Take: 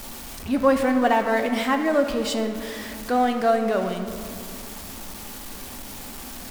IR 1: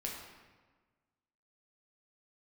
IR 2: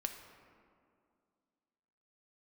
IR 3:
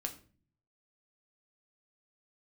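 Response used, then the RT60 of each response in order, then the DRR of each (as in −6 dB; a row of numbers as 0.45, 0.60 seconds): 2; 1.4, 2.3, 0.40 seconds; −2.5, 5.0, 3.5 decibels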